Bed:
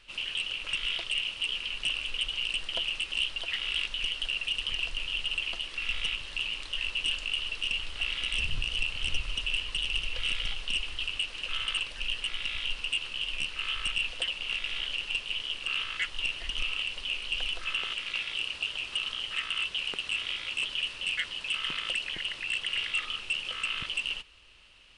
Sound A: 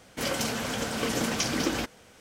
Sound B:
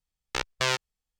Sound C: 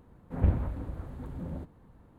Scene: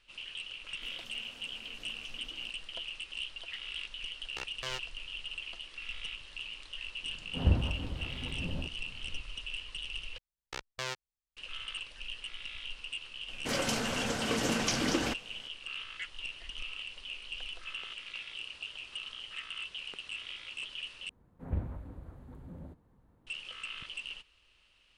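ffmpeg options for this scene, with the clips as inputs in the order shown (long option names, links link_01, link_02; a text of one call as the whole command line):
ffmpeg -i bed.wav -i cue0.wav -i cue1.wav -i cue2.wav -filter_complex "[1:a]asplit=2[link_01][link_02];[2:a]asplit=2[link_03][link_04];[3:a]asplit=2[link_05][link_06];[0:a]volume=-9.5dB[link_07];[link_01]acompressor=threshold=-38dB:ratio=6:attack=3.2:release=140:knee=1:detection=peak[link_08];[link_02]lowpass=10000[link_09];[link_07]asplit=3[link_10][link_11][link_12];[link_10]atrim=end=10.184[link_13];[link_04]atrim=end=1.19,asetpts=PTS-STARTPTS,volume=-11.5dB[link_14];[link_11]atrim=start=11.366:end=21.094[link_15];[link_06]atrim=end=2.18,asetpts=PTS-STARTPTS,volume=-9dB[link_16];[link_12]atrim=start=23.266[link_17];[link_08]atrim=end=2.2,asetpts=PTS-STARTPTS,volume=-16.5dB,afade=type=in:duration=0.004:curve=hsin,afade=type=out:start_time=2.196:duration=0.004:curve=hsin,adelay=650[link_18];[link_03]atrim=end=1.19,asetpts=PTS-STARTPTS,volume=-13.5dB,afade=type=in:duration=0.004:curve=hsin,afade=type=out:start_time=1.186:duration=0.004:curve=hsin,adelay=4020[link_19];[link_05]atrim=end=2.18,asetpts=PTS-STARTPTS,volume=-1dB,afade=type=in:duration=0.004:curve=hsin,afade=type=out:start_time=2.176:duration=0.004:curve=hsin,adelay=7030[link_20];[link_09]atrim=end=2.2,asetpts=PTS-STARTPTS,volume=-2.5dB,afade=type=in:duration=0.004:curve=hsin,afade=type=out:start_time=2.196:duration=0.004:curve=hsin,adelay=13280[link_21];[link_13][link_14]acrossfade=duration=0.004:curve1=hsin:curve2=hsin[link_22];[link_22][link_15]acrossfade=duration=0.004:curve1=hsin:curve2=hsin[link_23];[link_23][link_16]acrossfade=duration=0.004:curve1=hsin:curve2=hsin[link_24];[link_24][link_17]acrossfade=duration=0.004:curve1=hsin:curve2=hsin[link_25];[link_25][link_18][link_19][link_20][link_21]amix=inputs=5:normalize=0" out.wav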